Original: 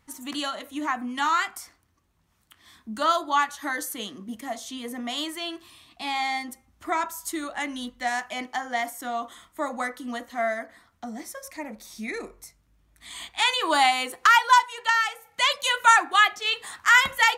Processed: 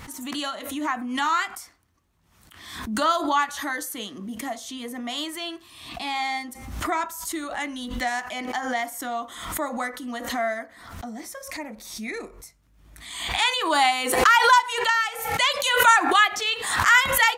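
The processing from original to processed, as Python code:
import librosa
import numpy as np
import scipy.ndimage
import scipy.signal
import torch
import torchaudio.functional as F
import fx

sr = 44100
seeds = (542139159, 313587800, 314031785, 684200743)

y = fx.pre_swell(x, sr, db_per_s=56.0)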